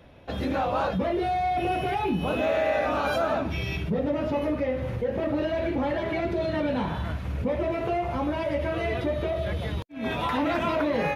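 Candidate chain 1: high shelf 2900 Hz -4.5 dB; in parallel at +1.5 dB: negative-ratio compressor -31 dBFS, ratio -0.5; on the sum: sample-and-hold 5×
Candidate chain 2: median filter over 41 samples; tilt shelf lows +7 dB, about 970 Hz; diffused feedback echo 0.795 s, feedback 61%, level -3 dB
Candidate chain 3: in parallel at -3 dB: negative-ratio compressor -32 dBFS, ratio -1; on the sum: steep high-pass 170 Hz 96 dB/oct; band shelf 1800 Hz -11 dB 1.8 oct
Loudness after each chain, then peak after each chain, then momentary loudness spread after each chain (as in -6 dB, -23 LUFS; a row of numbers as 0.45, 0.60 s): -23.5, -23.0, -26.0 LUFS; -10.5, -9.0, -13.0 dBFS; 1, 3, 5 LU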